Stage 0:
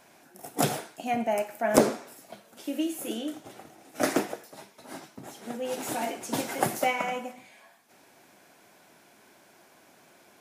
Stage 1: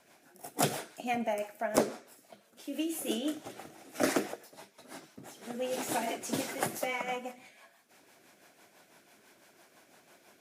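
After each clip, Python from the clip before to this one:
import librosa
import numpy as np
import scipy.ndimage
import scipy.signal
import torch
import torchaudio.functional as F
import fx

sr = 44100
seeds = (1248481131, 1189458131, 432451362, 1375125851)

y = fx.low_shelf(x, sr, hz=370.0, db=-4.5)
y = fx.rider(y, sr, range_db=5, speed_s=0.5)
y = fx.rotary(y, sr, hz=6.0)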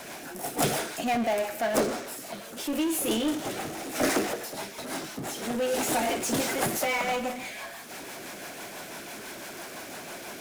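y = fx.power_curve(x, sr, exponent=0.5)
y = y * 10.0 ** (-3.5 / 20.0)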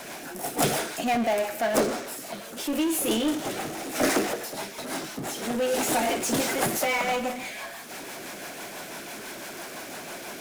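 y = fx.peak_eq(x, sr, hz=87.0, db=-4.5, octaves=0.67)
y = y * 10.0 ** (2.0 / 20.0)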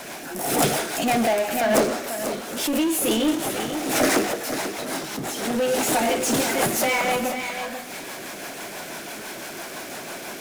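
y = x + 10.0 ** (-9.0 / 20.0) * np.pad(x, (int(490 * sr / 1000.0), 0))[:len(x)]
y = fx.pre_swell(y, sr, db_per_s=54.0)
y = y * 10.0 ** (3.0 / 20.0)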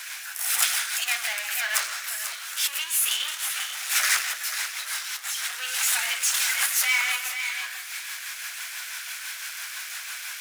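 y = scipy.signal.sosfilt(scipy.signal.butter(4, 1400.0, 'highpass', fs=sr, output='sos'), x)
y = y * 10.0 ** (2.5 / 20.0)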